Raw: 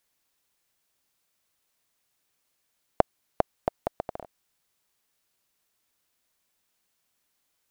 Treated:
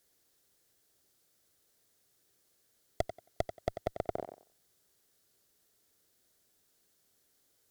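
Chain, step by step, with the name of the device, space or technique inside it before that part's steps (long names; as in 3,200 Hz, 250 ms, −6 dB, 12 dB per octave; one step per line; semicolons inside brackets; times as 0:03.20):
rockabilly slapback (tube saturation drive 27 dB, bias 0.55; tape delay 91 ms, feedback 22%, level −8 dB, low-pass 4,200 Hz)
graphic EQ with 15 bands 100 Hz +4 dB, 400 Hz +6 dB, 1,000 Hz −8 dB, 2,500 Hz −8 dB
level +6.5 dB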